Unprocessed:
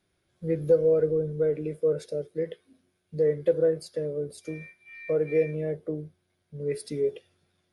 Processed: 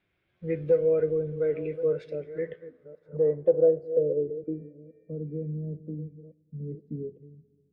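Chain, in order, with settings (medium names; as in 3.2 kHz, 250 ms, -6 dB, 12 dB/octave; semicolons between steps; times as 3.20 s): chunks repeated in reverse 634 ms, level -14 dB; low-pass sweep 2.5 kHz -> 210 Hz, 2.09–5.10 s; two-slope reverb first 0.25 s, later 2.9 s, from -18 dB, DRR 16 dB; trim -3 dB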